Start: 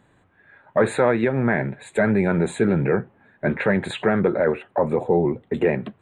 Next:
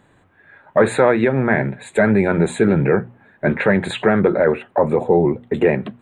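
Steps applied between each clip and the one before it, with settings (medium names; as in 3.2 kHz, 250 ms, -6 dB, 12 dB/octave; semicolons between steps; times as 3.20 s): hum notches 60/120/180/240 Hz; trim +4.5 dB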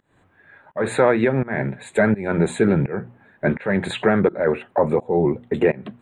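volume shaper 84 bpm, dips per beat 1, -23 dB, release 292 ms; trim -2 dB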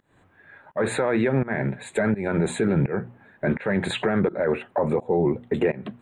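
peak limiter -13 dBFS, peak gain reduction 9 dB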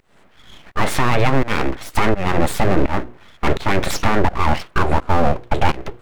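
full-wave rectifier; trim +9 dB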